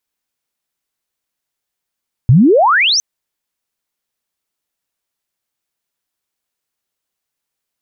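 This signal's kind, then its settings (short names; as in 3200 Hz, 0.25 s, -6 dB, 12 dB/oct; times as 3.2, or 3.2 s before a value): chirp logarithmic 110 Hz -> 6300 Hz -3.5 dBFS -> -10.5 dBFS 0.71 s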